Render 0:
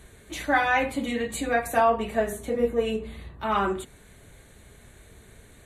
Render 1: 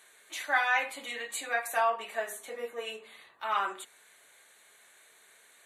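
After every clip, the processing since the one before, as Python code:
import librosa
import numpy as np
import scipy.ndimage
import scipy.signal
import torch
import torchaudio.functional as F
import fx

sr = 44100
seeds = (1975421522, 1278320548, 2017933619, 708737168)

y = scipy.signal.sosfilt(scipy.signal.butter(2, 910.0, 'highpass', fs=sr, output='sos'), x)
y = y * 10.0 ** (-2.0 / 20.0)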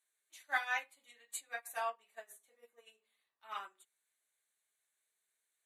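y = fx.high_shelf(x, sr, hz=3800.0, db=11.0)
y = fx.upward_expand(y, sr, threshold_db=-38.0, expansion=2.5)
y = y * 10.0 ** (-7.0 / 20.0)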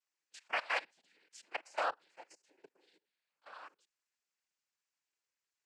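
y = fx.level_steps(x, sr, step_db=19)
y = fx.noise_vocoder(y, sr, seeds[0], bands=8)
y = y * 10.0 ** (6.0 / 20.0)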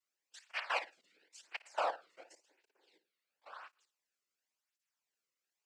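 y = fx.room_flutter(x, sr, wall_m=9.3, rt60_s=0.26)
y = fx.flanger_cancel(y, sr, hz=0.94, depth_ms=1.3)
y = y * 10.0 ** (2.0 / 20.0)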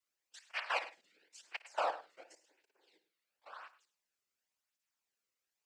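y = x + 10.0 ** (-16.0 / 20.0) * np.pad(x, (int(102 * sr / 1000.0), 0))[:len(x)]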